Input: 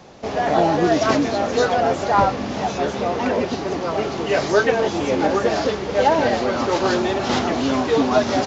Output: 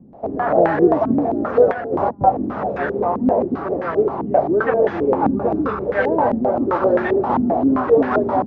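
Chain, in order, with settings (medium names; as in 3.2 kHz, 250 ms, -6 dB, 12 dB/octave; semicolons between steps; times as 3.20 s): 1.65–2.21 s: compressor with a negative ratio -22 dBFS, ratio -0.5; 5.23–5.86 s: comb 0.8 ms, depth 51%; step-sequenced low-pass 7.6 Hz 240–1700 Hz; trim -2.5 dB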